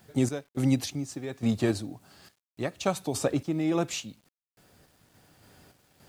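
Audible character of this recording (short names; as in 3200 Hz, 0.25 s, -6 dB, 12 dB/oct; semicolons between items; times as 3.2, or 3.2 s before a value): random-step tremolo, depth 90%; a quantiser's noise floor 12-bit, dither none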